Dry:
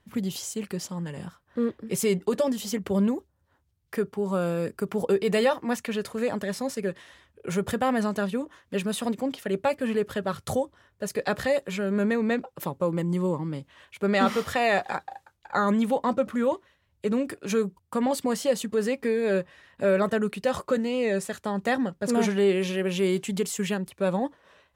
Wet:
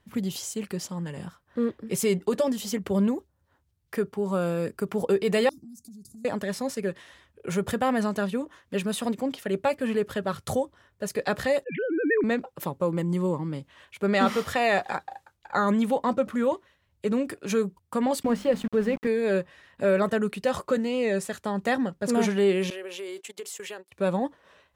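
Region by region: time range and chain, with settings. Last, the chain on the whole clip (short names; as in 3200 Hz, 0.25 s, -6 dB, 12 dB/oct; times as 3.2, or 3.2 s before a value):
5.49–6.25 inverse Chebyshev band-stop 500–3100 Hz + compressor, threshold -44 dBFS
11.64–12.24 sine-wave speech + LPF 2700 Hz
18.23–19.07 notches 50/100/150/200/250/300/350/400 Hz + sample gate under -36 dBFS + tone controls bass +7 dB, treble -14 dB
22.7–23.92 HPF 360 Hz 24 dB/oct + gate -38 dBFS, range -19 dB + compressor 4:1, threshold -35 dBFS
whole clip: dry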